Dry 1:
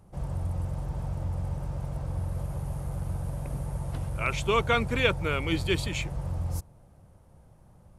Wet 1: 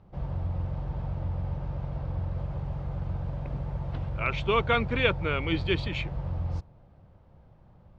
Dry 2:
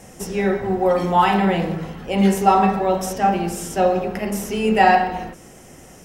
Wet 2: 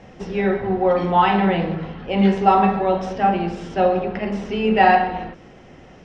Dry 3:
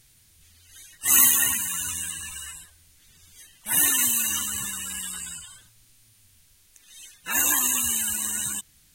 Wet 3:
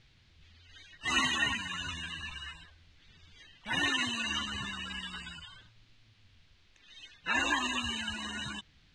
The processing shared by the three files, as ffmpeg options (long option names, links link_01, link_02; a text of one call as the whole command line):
ffmpeg -i in.wav -af "lowpass=frequency=4100:width=0.5412,lowpass=frequency=4100:width=1.3066" out.wav